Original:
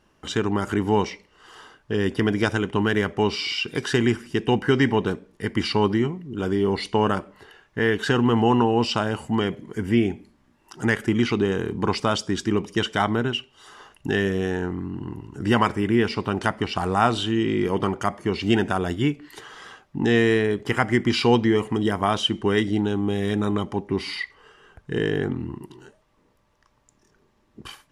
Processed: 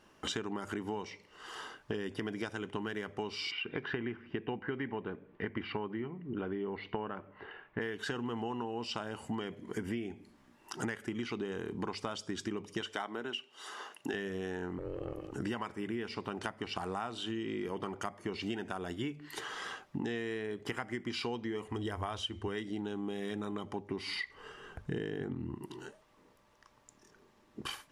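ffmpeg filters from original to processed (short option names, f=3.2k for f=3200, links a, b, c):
-filter_complex "[0:a]asplit=3[a][b][c];[a]afade=t=out:st=3.5:d=0.02[d];[b]lowpass=f=2.7k:w=0.5412,lowpass=f=2.7k:w=1.3066,afade=t=in:st=3.5:d=0.02,afade=t=out:st=7.8:d=0.02[e];[c]afade=t=in:st=7.8:d=0.02[f];[d][e][f]amix=inputs=3:normalize=0,asettb=1/sr,asplit=3[g][h][i];[g]atrim=end=12.814[j];[h]atrim=start=12.81:end=14.14,asetpts=PTS-STARTPTS,afade=t=in:d=0.004:c=qsin,afade=t=out:st=1.326:d=0.004:c=qsin,highpass=270[k];[i]atrim=start=14.136[l];[j][k]acrossfade=d=0.004:c1=hsin:c2=qsin[m];[m][l]acrossfade=d=0.004:c1=qsin:c2=hsin,asettb=1/sr,asplit=3[n][o][p];[n]atrim=end=14.784[q];[o]atrim=start=14.78:end=15.33,asetpts=PTS-STARTPTS,afade=t=in:d=0.004:c=qsin,afade=t=out:st=0.546:d=0.004:c=qsin,aeval=exprs='val(0)*sin(2*PI*210*n/s)':c=same[r];[p]atrim=start=15.326[s];[q][r]acrossfade=d=0.004:c1=hsin:c2=qsin[t];[t][s]acrossfade=d=0.004:c1=qsin:c2=hsin,asettb=1/sr,asplit=3[u][v][w];[u]atrim=end=21.664[x];[v]atrim=start=21.66:end=22.48,asetpts=PTS-STARTPTS,afade=t=in:d=0.004:c=qsin,afade=t=out:st=0.816:d=0.004:c=qsin,lowshelf=f=110:t=q:w=3:g=11.5[y];[w]atrim=start=22.476[z];[x][y]acrossfade=d=0.004:c1=hsin:c2=qsin[aa];[aa][z]acrossfade=d=0.004:c1=qsin:c2=hsin,asettb=1/sr,asplit=3[ab][ac][ad];[ab]atrim=end=24.114[ae];[ac]atrim=start=24.11:end=25.55,asetpts=PTS-STARTPTS,afade=t=in:d=0.004:c=qsin,afade=t=out:st=1.436:d=0.004:c=qsin,lowshelf=f=270:g=8.5[af];[ad]atrim=start=25.546[ag];[ae][af]acrossfade=d=0.004:c1=hsin:c2=qsin[ah];[ah][ag]acrossfade=d=0.004:c1=qsin:c2=hsin,lowshelf=f=140:g=-8.5,bandreject=f=50:t=h:w=6,bandreject=f=100:t=h:w=6,bandreject=f=150:t=h:w=6,acompressor=threshold=-35dB:ratio=12,volume=1dB"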